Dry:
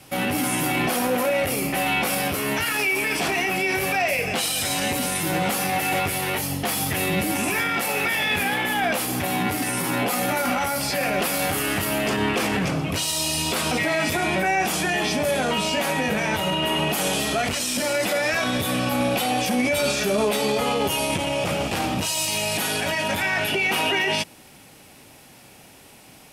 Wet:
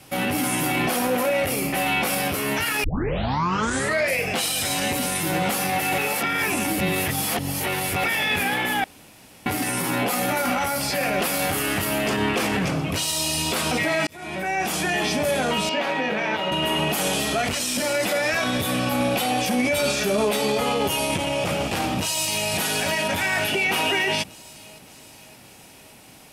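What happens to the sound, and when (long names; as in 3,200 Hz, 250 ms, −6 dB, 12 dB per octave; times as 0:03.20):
0:02.84: tape start 1.36 s
0:05.98–0:08.04: reverse
0:08.84–0:09.46: fill with room tone
0:14.07–0:15.07: fade in equal-power
0:15.69–0:16.52: three-way crossover with the lows and the highs turned down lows −17 dB, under 200 Hz, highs −22 dB, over 4,700 Hz
0:21.96–0:22.50: delay throw 570 ms, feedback 60%, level −7.5 dB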